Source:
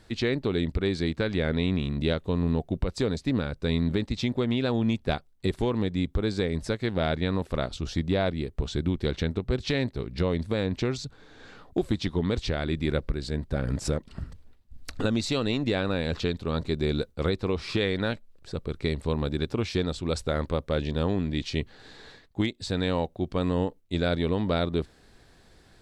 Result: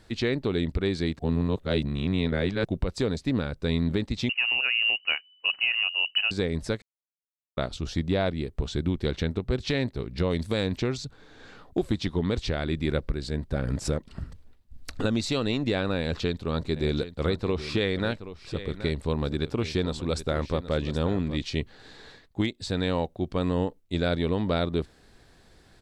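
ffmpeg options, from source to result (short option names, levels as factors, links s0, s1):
-filter_complex "[0:a]asettb=1/sr,asplit=3[s0][s1][s2];[s0]atrim=end=4.294[s3];[s1]atrim=start=4.29:end=6.31,asetpts=PTS-STARTPTS,afade=t=in:d=0.004:c=qsin,afade=t=out:st=2.016:d=0.004:c=qsin,lowpass=f=2600:t=q:w=0.5098,lowpass=f=2600:t=q:w=0.6013,lowpass=f=2600:t=q:w=0.9,lowpass=f=2600:t=q:w=2.563,afreqshift=-3000[s4];[s2]atrim=start=6.306[s5];[s3][s4]acrossfade=d=0.004:c1=hsin:c2=qsin[s6];[s6][s5]acrossfade=d=0.004:c1=qsin:c2=hsin,asettb=1/sr,asplit=3[s7][s8][s9];[s7]atrim=end=10.304[s10];[s8]atrim=start=10.3:end=10.78,asetpts=PTS-STARTPTS,afade=t=in:d=0.004:c=qsin,afade=t=out:st=0.476:d=0.004:c=qsin,highshelf=f=4100:g=12[s11];[s9]atrim=start=10.776[s12];[s10][s11]acrossfade=d=0.004:c1=hsin:c2=qsin[s13];[s13][s12]acrossfade=d=0.004:c1=qsin:c2=hsin,asplit=3[s14][s15][s16];[s14]afade=t=out:st=16.75:d=0.02[s17];[s15]aecho=1:1:774:0.224,afade=t=in:st=16.75:d=0.02,afade=t=out:st=21.41:d=0.02[s18];[s16]afade=t=in:st=21.41:d=0.02[s19];[s17][s18][s19]amix=inputs=3:normalize=0,asplit=5[s20][s21][s22][s23][s24];[s20]atrim=end=1.192[s25];[s21]atrim=start=1.188:end=2.652,asetpts=PTS-STARTPTS,areverse[s26];[s22]atrim=start=2.648:end=6.82,asetpts=PTS-STARTPTS,afade=t=out:st=4.168:d=0.004:c=hsin[s27];[s23]atrim=start=6.82:end=7.57,asetpts=PTS-STARTPTS,volume=0[s28];[s24]atrim=start=7.57,asetpts=PTS-STARTPTS,afade=t=in:d=0.004:c=hsin[s29];[s25][s26]acrossfade=d=0.004:c1=hsin:c2=hsin[s30];[s27][s28][s29]concat=n=3:v=0:a=1[s31];[s30][s31]acrossfade=d=0.004:c1=hsin:c2=hsin"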